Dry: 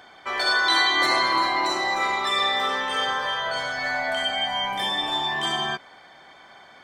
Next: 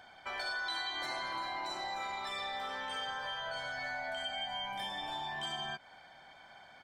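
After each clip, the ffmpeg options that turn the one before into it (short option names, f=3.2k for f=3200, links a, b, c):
-af "lowshelf=f=90:g=5,aecho=1:1:1.3:0.44,acompressor=threshold=-29dB:ratio=3,volume=-9dB"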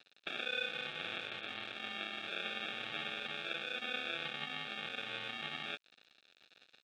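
-af "aresample=8000,acrusher=samples=8:mix=1:aa=0.000001,aresample=44100,aeval=exprs='sgn(val(0))*max(abs(val(0))-0.00211,0)':c=same,bandpass=f=3k:t=q:w=1.3:csg=0,volume=12.5dB"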